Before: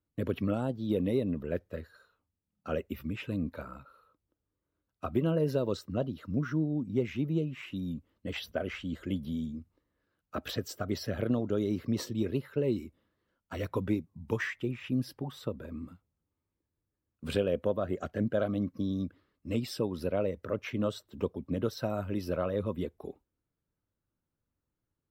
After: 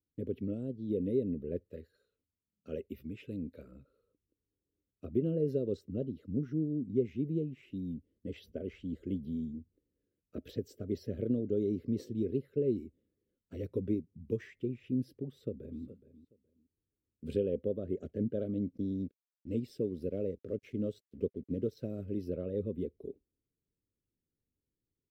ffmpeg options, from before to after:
-filter_complex "[0:a]asettb=1/sr,asplit=3[a][b][c];[a]atrim=end=1.644[d];[b]atrim=start=1.64:end=3.72,asetpts=PTS-STARTPTS,afade=t=in:d=0.004:c=qsin,afade=t=out:st=2.076:d=0.004:c=qsin,tiltshelf=f=780:g=-4.5[e];[c]atrim=start=3.716[f];[d][e]acrossfade=d=0.004:c1=hsin:c2=qsin[g];[g][f]acrossfade=d=0.004:c1=qsin:c2=hsin,asplit=2[h][i];[i]afade=t=in:st=15.2:d=0.01,afade=t=out:st=15.82:d=0.01,aecho=0:1:420|840:0.16788|0.0335761[j];[h][j]amix=inputs=2:normalize=0,asettb=1/sr,asplit=3[k][l][m];[k]atrim=end=18.754[n];[l]atrim=start=18.75:end=22.18,asetpts=PTS-STARTPTS,afade=t=in:d=0.004:c=qsin,afade=t=out:st=3.426:d=0.004:c=qsin,aeval=exprs='sgn(val(0))*max(abs(val(0))-0.00168,0)':c=same[o];[m]atrim=start=22.176[p];[n][o]acrossfade=d=0.004:c1=hsin:c2=qsin[q];[q][p]acrossfade=d=0.004:c1=qsin:c2=hsin,firequalizer=gain_entry='entry(160,0);entry(390,11);entry(830,-27);entry(2100,-12)':delay=0.05:min_phase=1,dynaudnorm=f=120:g=17:m=3dB,equalizer=f=350:t=o:w=0.57:g=-7.5,volume=-7dB"

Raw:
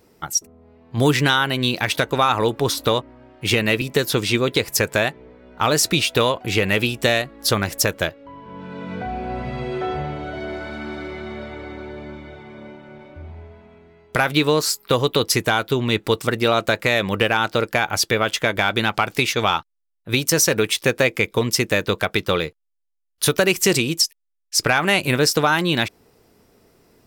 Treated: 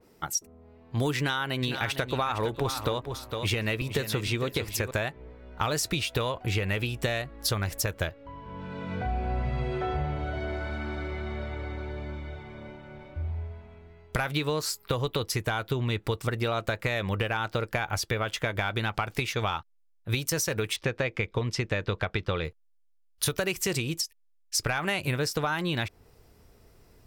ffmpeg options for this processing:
-filter_complex "[0:a]asettb=1/sr,asplit=3[a][b][c];[a]atrim=end=1.174[d];[b]atrim=start=1.17:end=4.91,asetpts=PTS-STARTPTS,afade=t=in:d=0.004:c=qsin,afade=t=out:st=3.736:d=0.004:c=qsin,aecho=1:1:457|914:0.282|0.0451,atrim=end_sample=164934[e];[c]atrim=start=4.906[f];[d][e]acrossfade=d=0.004:c1=hsin:c2=qsin[g];[g][f]acrossfade=d=0.004:c1=qsin:c2=hsin,asettb=1/sr,asplit=3[h][i][j];[h]atrim=end=20.764[k];[i]atrim=start=20.76:end=22.45,asetpts=PTS-STARTPTS,afade=t=in:d=0.004:c=qsin,afade=t=out:st=1.686:d=0.004:c=qsin,lowpass=4.8k[l];[j]atrim=start=22.446[m];[k][l]acrossfade=d=0.004:c1=hsin:c2=qsin[n];[n][m]acrossfade=d=0.004:c1=qsin:c2=hsin,asubboost=boost=4.5:cutoff=100,acompressor=threshold=-21dB:ratio=5,adynamicequalizer=threshold=0.00891:dfrequency=2800:dqfactor=0.7:tfrequency=2800:tqfactor=0.7:attack=5:release=100:ratio=0.375:range=2:mode=cutabove:tftype=highshelf,volume=-3.5dB"

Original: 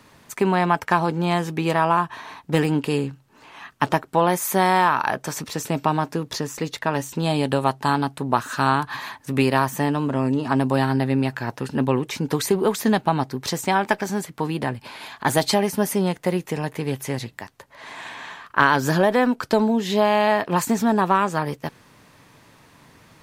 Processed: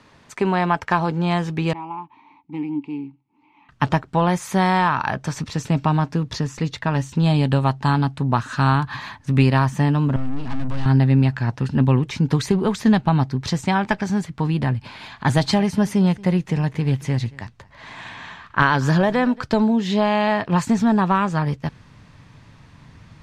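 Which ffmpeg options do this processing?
-filter_complex "[0:a]asettb=1/sr,asplit=3[a][b][c];[a]atrim=end=1.734[d];[b]atrim=start=1.73:end=3.69,asetpts=PTS-STARTPTS,afade=t=in:d=0.004:c=qsin,afade=t=out:st=1.956:d=0.004:c=qsin,asplit=3[e][f][g];[e]bandpass=f=300:t=q:w=8,volume=0dB[h];[f]bandpass=f=870:t=q:w=8,volume=-6dB[i];[g]bandpass=f=2.24k:t=q:w=8,volume=-9dB[j];[h][i][j]amix=inputs=3:normalize=0[k];[c]atrim=start=3.686[l];[d][k]acrossfade=d=0.004:c1=hsin:c2=qsin[m];[m][l]acrossfade=d=0.004:c1=qsin:c2=hsin,asettb=1/sr,asplit=3[n][o][p];[n]atrim=end=10.164[q];[o]atrim=start=10.16:end=10.86,asetpts=PTS-STARTPTS,afade=t=in:d=0.004:c=qsin,afade=t=out:st=0.696:d=0.004:c=qsin,aeval=exprs='(tanh(28.2*val(0)+0.65)-tanh(0.65))/28.2':c=same[r];[p]atrim=start=10.856[s];[q][r]acrossfade=d=0.004:c1=hsin:c2=qsin[t];[t][s]acrossfade=d=0.004:c1=qsin:c2=hsin,asettb=1/sr,asplit=3[u][v][w];[u]atrim=end=14.804[x];[v]atrim=start=14.8:end=19.43,asetpts=PTS-STARTPTS,afade=t=in:d=0.004:c=qsin,afade=t=out:st=4.626:d=0.004:c=qsin,aecho=1:1:229:0.0794,atrim=end_sample=204183[y];[w]atrim=start=19.426[z];[x][y]acrossfade=d=0.004:c1=hsin:c2=qsin[aa];[aa][z]acrossfade=d=0.004:c1=qsin:c2=hsin,lowpass=5.9k,asubboost=boost=5:cutoff=170"

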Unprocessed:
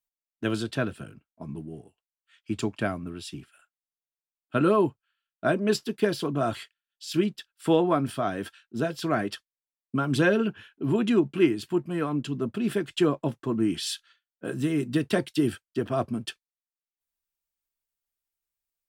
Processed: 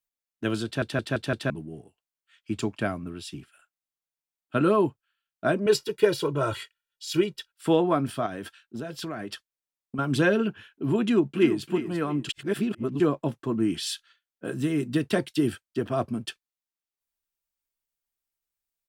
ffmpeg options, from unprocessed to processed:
-filter_complex "[0:a]asettb=1/sr,asplit=3[a][b][c];[a]atrim=end=5.664[d];[b]atrim=start=5.66:end=7.52,asetpts=PTS-STARTPTS,afade=t=in:d=0.004:c=qsin,afade=t=out:st=1.856:d=0.004:c=qsin,aecho=1:1:2.1:0.89,atrim=end_sample=82026[e];[c]atrim=start=7.516[f];[d][e]acrossfade=d=0.004:c1=hsin:c2=qsin[g];[g][f]acrossfade=d=0.004:c1=qsin:c2=hsin,asettb=1/sr,asplit=3[h][i][j];[h]atrim=end=8.264[k];[i]atrim=start=8.26:end=9.99,asetpts=PTS-STARTPTS,afade=t=in:d=0.004:c=qsin,afade=t=out:st=1.726:d=0.004:c=qsin,acompressor=threshold=-30dB:ratio=6:attack=3.2:release=140:knee=1:detection=peak[l];[j]atrim=start=9.986[m];[k][l]acrossfade=d=0.004:c1=hsin:c2=qsin[n];[n][m]acrossfade=d=0.004:c1=qsin:c2=hsin,asplit=2[o][p];[p]afade=t=in:st=11.01:d=0.01,afade=t=out:st=11.66:d=0.01,aecho=0:1:340|680|1020:0.334965|0.10049|0.0301469[q];[o][q]amix=inputs=2:normalize=0,asplit=8[r][s][t][u][v][w][x][y];[r]atrim=end=0.822[z];[s]atrim=start=0.648:end=0.822[aa];[t]atrim=start=0.648:end=0.822[ab];[u]atrim=start=0.648:end=0.822[ac];[v]atrim=start=0.648:end=0.822[ad];[w]atrim=start=1.498:end=12.292[ae];[x]atrim=start=12.288:end=13.002,asetpts=PTS-STARTPTS,areverse[af];[y]atrim=start=12.998[ag];[z][aa]acrossfade=d=0.004:c1=hsin:c2=hsin[ah];[ah][ab]acrossfade=d=0.004:c1=hsin:c2=hsin[ai];[ai][ac]acrossfade=d=0.004:c1=hsin:c2=hsin[aj];[aj][ad]acrossfade=d=0.004:c1=hsin:c2=hsin[ak];[ak][ae]acrossfade=d=0.004:c1=hsin:c2=hsin[al];[al][af]acrossfade=d=0.004:c1=hsin:c2=hsin[am];[am][ag]acrossfade=d=0.004:c1=hsin:c2=hsin"

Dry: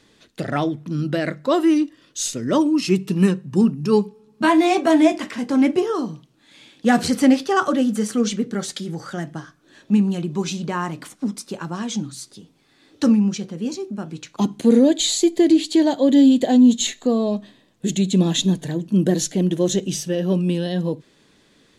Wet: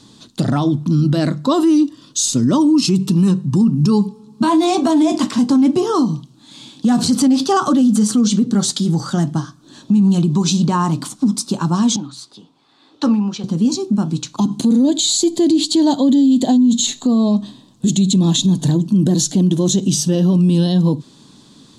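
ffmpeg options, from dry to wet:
-filter_complex "[0:a]asettb=1/sr,asplit=3[a][b][c];[a]atrim=end=11.964[d];[b]atrim=start=11.96:end=13.44,asetpts=PTS-STARTPTS,afade=t=in:d=0.004:c=qsin,afade=t=out:st=1.476:d=0.004:c=qsin,acrossover=split=410 3500:gain=0.141 1 0.141[e][f][g];[e][f][g]amix=inputs=3:normalize=0[h];[c]atrim=start=13.436[i];[d][h]acrossfade=d=0.004:c1=hsin:c2=qsin[j];[j][i]acrossfade=d=0.004:c1=qsin:c2=hsin,equalizer=f=125:t=o:w=1:g=10,equalizer=f=250:t=o:w=1:g=10,equalizer=f=500:t=o:w=1:g=-5,equalizer=f=1k:t=o:w=1:g=10,equalizer=f=2k:t=o:w=1:g=-11,equalizer=f=4k:t=o:w=1:g=9,equalizer=f=8k:t=o:w=1:g=8,alimiter=limit=-11dB:level=0:latency=1:release=81,volume=3.5dB"

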